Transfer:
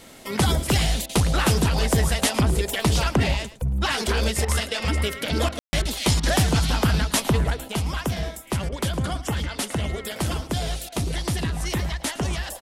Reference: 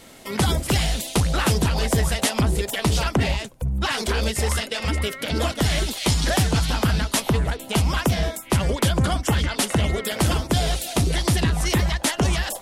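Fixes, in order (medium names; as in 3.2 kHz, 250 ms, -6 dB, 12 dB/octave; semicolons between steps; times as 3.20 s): room tone fill 5.59–5.73 s; interpolate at 1.06/4.45/5.49/5.82/6.20/8.69/10.89 s, 31 ms; inverse comb 110 ms -16 dB; trim 0 dB, from 7.68 s +5.5 dB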